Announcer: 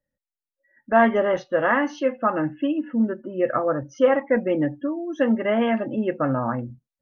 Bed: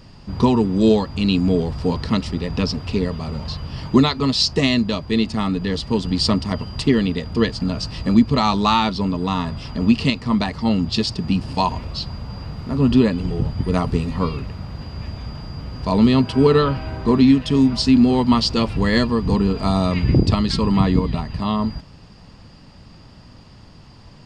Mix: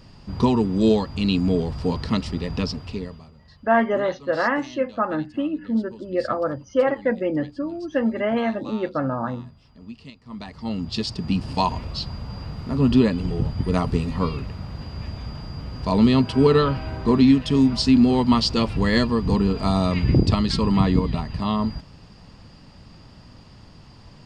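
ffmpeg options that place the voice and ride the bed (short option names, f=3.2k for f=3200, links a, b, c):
-filter_complex "[0:a]adelay=2750,volume=-1.5dB[a];[1:a]volume=18.5dB,afade=t=out:st=2.51:d=0.81:silence=0.0944061,afade=t=in:st=10.23:d=1.26:silence=0.0841395[b];[a][b]amix=inputs=2:normalize=0"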